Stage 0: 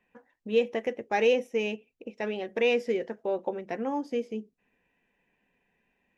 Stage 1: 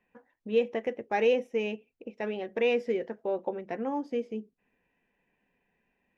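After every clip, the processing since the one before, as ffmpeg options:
ffmpeg -i in.wav -af "highshelf=frequency=4800:gain=-11,volume=-1dB" out.wav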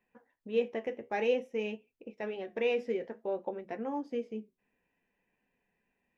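ffmpeg -i in.wav -af "flanger=delay=7.9:depth=6.9:regen=-66:speed=0.55:shape=triangular" out.wav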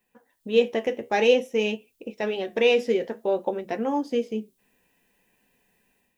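ffmpeg -i in.wav -af "dynaudnorm=framelen=230:gausssize=3:maxgain=7.5dB,aexciter=amount=2.4:drive=6.3:freq=3100,volume=2.5dB" out.wav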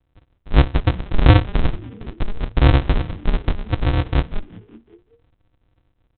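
ffmpeg -i in.wav -filter_complex "[0:a]aresample=8000,acrusher=samples=39:mix=1:aa=0.000001,aresample=44100,asplit=5[link_01][link_02][link_03][link_04][link_05];[link_02]adelay=186,afreqshift=-120,volume=-21dB[link_06];[link_03]adelay=372,afreqshift=-240,volume=-25.9dB[link_07];[link_04]adelay=558,afreqshift=-360,volume=-30.8dB[link_08];[link_05]adelay=744,afreqshift=-480,volume=-35.6dB[link_09];[link_01][link_06][link_07][link_08][link_09]amix=inputs=5:normalize=0,volume=8dB" out.wav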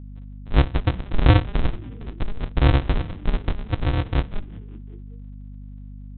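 ffmpeg -i in.wav -af "aeval=exprs='val(0)+0.0224*(sin(2*PI*50*n/s)+sin(2*PI*2*50*n/s)/2+sin(2*PI*3*50*n/s)/3+sin(2*PI*4*50*n/s)/4+sin(2*PI*5*50*n/s)/5)':channel_layout=same,volume=-3.5dB" out.wav

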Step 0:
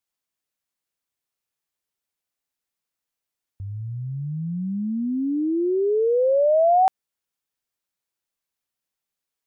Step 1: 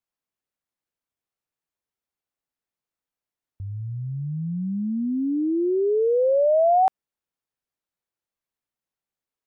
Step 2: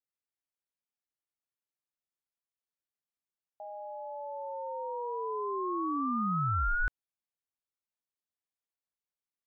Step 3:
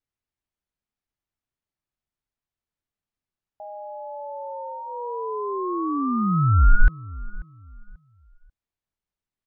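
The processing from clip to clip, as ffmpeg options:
ffmpeg -i in.wav -af "highshelf=frequency=2200:gain=-9.5" out.wav
ffmpeg -i in.wav -af "aeval=exprs='val(0)*sin(2*PI*720*n/s)':channel_layout=same,volume=-8dB" out.wav
ffmpeg -i in.wav -filter_complex "[0:a]aemphasis=mode=reproduction:type=bsi,bandreject=frequency=510:width=12,asplit=2[link_01][link_02];[link_02]adelay=539,lowpass=frequency=1500:poles=1,volume=-19dB,asplit=2[link_03][link_04];[link_04]adelay=539,lowpass=frequency=1500:poles=1,volume=0.3,asplit=2[link_05][link_06];[link_06]adelay=539,lowpass=frequency=1500:poles=1,volume=0.3[link_07];[link_01][link_03][link_05][link_07]amix=inputs=4:normalize=0,volume=5dB" out.wav

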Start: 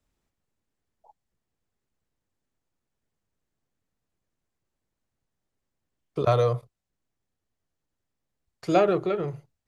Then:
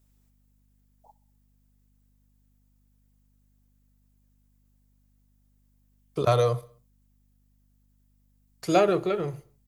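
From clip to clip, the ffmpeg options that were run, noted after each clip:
ffmpeg -i in.wav -af "aemphasis=mode=production:type=50fm,aeval=exprs='val(0)+0.000631*(sin(2*PI*50*n/s)+sin(2*PI*2*50*n/s)/2+sin(2*PI*3*50*n/s)/3+sin(2*PI*4*50*n/s)/4+sin(2*PI*5*50*n/s)/5)':channel_layout=same,aecho=1:1:64|128|192|256:0.075|0.0397|0.0211|0.0112" out.wav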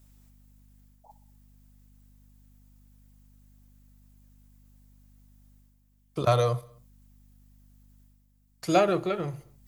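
ffmpeg -i in.wav -af "equalizer=frequency=430:width=5.1:gain=-7.5,areverse,acompressor=mode=upward:threshold=-48dB:ratio=2.5,areverse" out.wav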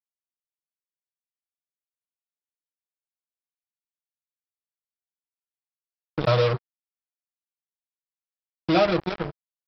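ffmpeg -i in.wav -af "aecho=1:1:6.3:0.76,aresample=11025,acrusher=bits=3:mix=0:aa=0.5,aresample=44100" out.wav

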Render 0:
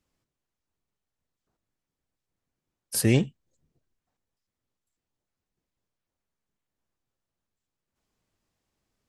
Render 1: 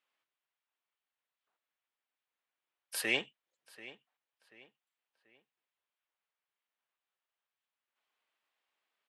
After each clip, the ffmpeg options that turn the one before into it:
ffmpeg -i in.wav -filter_complex "[0:a]highpass=850,highshelf=frequency=4300:width_type=q:width=1.5:gain=-10,asplit=2[link_01][link_02];[link_02]adelay=736,lowpass=frequency=3900:poles=1,volume=-17dB,asplit=2[link_03][link_04];[link_04]adelay=736,lowpass=frequency=3900:poles=1,volume=0.39,asplit=2[link_05][link_06];[link_06]adelay=736,lowpass=frequency=3900:poles=1,volume=0.39[link_07];[link_01][link_03][link_05][link_07]amix=inputs=4:normalize=0" out.wav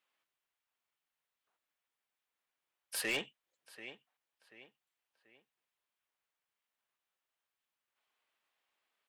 ffmpeg -i in.wav -af "asoftclip=type=tanh:threshold=-29.5dB,volume=1dB" out.wav

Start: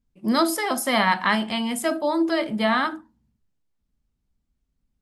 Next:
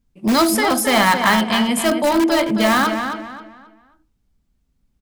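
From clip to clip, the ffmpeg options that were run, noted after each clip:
ffmpeg -i in.wav -filter_complex "[0:a]asplit=2[link_01][link_02];[link_02]aeval=exprs='(mod(7.5*val(0)+1,2)-1)/7.5':channel_layout=same,volume=-8.5dB[link_03];[link_01][link_03]amix=inputs=2:normalize=0,asplit=2[link_04][link_05];[link_05]adelay=267,lowpass=frequency=4000:poles=1,volume=-7dB,asplit=2[link_06][link_07];[link_07]adelay=267,lowpass=frequency=4000:poles=1,volume=0.32,asplit=2[link_08][link_09];[link_09]adelay=267,lowpass=frequency=4000:poles=1,volume=0.32,asplit=2[link_10][link_11];[link_11]adelay=267,lowpass=frequency=4000:poles=1,volume=0.32[link_12];[link_04][link_06][link_08][link_10][link_12]amix=inputs=5:normalize=0,volume=4.5dB" out.wav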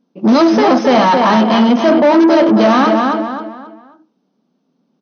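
ffmpeg -i in.wav -filter_complex "[0:a]equalizer=frequency=250:width_type=o:width=1:gain=6,equalizer=frequency=500:width_type=o:width=1:gain=4,equalizer=frequency=2000:width_type=o:width=1:gain=-12,asplit=2[link_01][link_02];[link_02]highpass=frequency=720:poles=1,volume=23dB,asoftclip=type=tanh:threshold=-2dB[link_03];[link_01][link_03]amix=inputs=2:normalize=0,lowpass=frequency=1500:poles=1,volume=-6dB,afftfilt=real='re*between(b*sr/4096,150,6400)':imag='im*between(b*sr/4096,150,6400)':win_size=4096:overlap=0.75" out.wav

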